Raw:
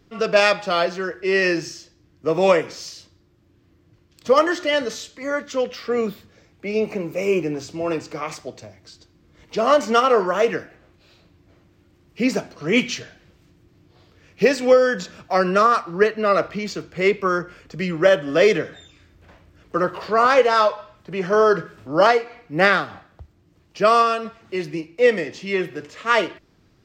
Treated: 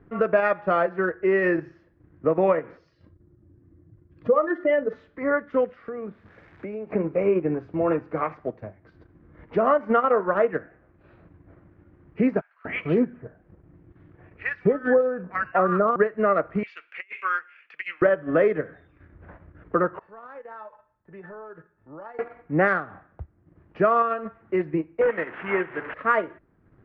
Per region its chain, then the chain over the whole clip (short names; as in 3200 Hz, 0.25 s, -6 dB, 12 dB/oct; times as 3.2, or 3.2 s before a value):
2.77–4.93 spectral contrast raised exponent 1.5 + doubler 48 ms -11 dB
5.68–6.93 switching spikes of -28.5 dBFS + compressor 12:1, threshold -33 dBFS
12.41–15.96 air absorption 70 m + three bands offset in time mids, highs, lows 50/240 ms, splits 1300/4900 Hz
16.63–18.02 resonant high-pass 2600 Hz, resonance Q 4.2 + negative-ratio compressor -27 dBFS, ratio -0.5
19.99–22.19 compressor, threshold -22 dBFS + resonator 880 Hz, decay 0.25 s, mix 90%
25.01–25.94 delta modulation 16 kbps, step -27.5 dBFS + tilt +3.5 dB/oct
whole clip: Chebyshev low-pass 1700 Hz, order 3; transient shaper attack +1 dB, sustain -8 dB; compressor 3:1, threshold -22 dBFS; gain +3.5 dB